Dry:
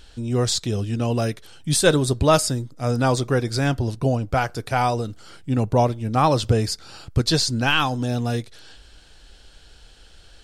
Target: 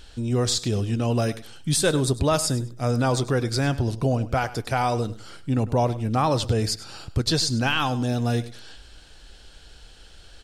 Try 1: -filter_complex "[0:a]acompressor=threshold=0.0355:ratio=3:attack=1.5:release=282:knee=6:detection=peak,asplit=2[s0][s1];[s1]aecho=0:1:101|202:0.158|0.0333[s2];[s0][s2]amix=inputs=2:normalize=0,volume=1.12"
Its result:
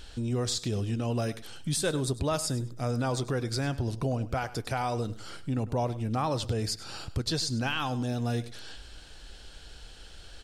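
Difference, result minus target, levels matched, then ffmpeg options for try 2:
compression: peak gain reduction +7.5 dB
-filter_complex "[0:a]acompressor=threshold=0.133:ratio=3:attack=1.5:release=282:knee=6:detection=peak,asplit=2[s0][s1];[s1]aecho=0:1:101|202:0.158|0.0333[s2];[s0][s2]amix=inputs=2:normalize=0,volume=1.12"

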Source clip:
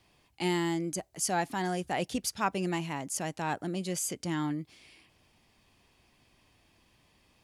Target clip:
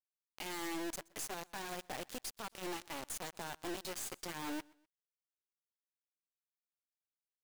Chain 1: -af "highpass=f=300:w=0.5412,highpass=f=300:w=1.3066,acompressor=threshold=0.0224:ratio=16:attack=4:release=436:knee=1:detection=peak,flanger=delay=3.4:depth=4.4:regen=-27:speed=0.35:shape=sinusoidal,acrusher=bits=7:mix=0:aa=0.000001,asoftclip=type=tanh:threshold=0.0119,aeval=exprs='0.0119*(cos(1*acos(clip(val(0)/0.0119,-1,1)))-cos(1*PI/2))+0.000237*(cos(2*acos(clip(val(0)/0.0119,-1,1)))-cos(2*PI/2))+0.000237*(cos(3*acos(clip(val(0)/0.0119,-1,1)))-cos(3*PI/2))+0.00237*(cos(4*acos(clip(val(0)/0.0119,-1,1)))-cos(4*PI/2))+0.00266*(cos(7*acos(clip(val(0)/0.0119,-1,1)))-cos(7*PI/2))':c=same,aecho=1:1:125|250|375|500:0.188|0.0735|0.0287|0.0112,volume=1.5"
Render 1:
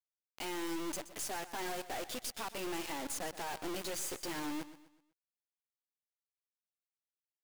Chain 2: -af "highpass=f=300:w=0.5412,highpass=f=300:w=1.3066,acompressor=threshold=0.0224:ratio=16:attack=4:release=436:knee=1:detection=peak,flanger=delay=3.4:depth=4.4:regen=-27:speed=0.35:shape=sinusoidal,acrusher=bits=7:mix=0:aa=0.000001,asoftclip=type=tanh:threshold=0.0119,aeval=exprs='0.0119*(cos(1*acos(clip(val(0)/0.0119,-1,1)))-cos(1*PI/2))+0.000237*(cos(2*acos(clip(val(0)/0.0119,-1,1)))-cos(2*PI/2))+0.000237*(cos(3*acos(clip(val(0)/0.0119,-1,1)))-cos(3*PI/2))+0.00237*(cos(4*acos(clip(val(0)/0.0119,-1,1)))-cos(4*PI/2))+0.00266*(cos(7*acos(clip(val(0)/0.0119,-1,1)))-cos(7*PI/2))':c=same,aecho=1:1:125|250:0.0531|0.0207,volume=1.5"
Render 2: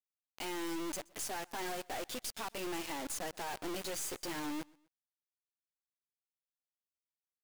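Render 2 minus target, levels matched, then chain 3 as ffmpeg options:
compression: peak gain reduction -6.5 dB
-af "highpass=f=300:w=0.5412,highpass=f=300:w=1.3066,acompressor=threshold=0.01:ratio=16:attack=4:release=436:knee=1:detection=peak,flanger=delay=3.4:depth=4.4:regen=-27:speed=0.35:shape=sinusoidal,acrusher=bits=7:mix=0:aa=0.000001,asoftclip=type=tanh:threshold=0.0119,aeval=exprs='0.0119*(cos(1*acos(clip(val(0)/0.0119,-1,1)))-cos(1*PI/2))+0.000237*(cos(2*acos(clip(val(0)/0.0119,-1,1)))-cos(2*PI/2))+0.000237*(cos(3*acos(clip(val(0)/0.0119,-1,1)))-cos(3*PI/2))+0.00237*(cos(4*acos(clip(val(0)/0.0119,-1,1)))-cos(4*PI/2))+0.00266*(cos(7*acos(clip(val(0)/0.0119,-1,1)))-cos(7*PI/2))':c=same,aecho=1:1:125|250:0.0531|0.0207,volume=1.5"

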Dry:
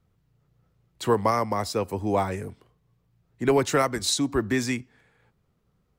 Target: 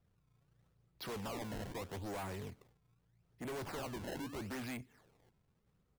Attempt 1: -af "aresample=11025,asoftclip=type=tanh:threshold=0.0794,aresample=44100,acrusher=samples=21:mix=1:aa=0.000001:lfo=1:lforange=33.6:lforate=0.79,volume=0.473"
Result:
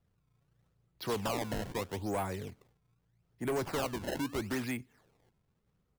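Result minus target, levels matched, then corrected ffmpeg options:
saturation: distortion -7 dB
-af "aresample=11025,asoftclip=type=tanh:threshold=0.02,aresample=44100,acrusher=samples=21:mix=1:aa=0.000001:lfo=1:lforange=33.6:lforate=0.79,volume=0.473"

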